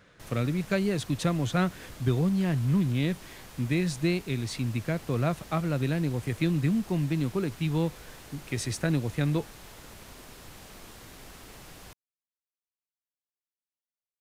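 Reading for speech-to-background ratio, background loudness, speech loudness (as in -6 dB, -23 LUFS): 18.0 dB, -47.0 LUFS, -29.0 LUFS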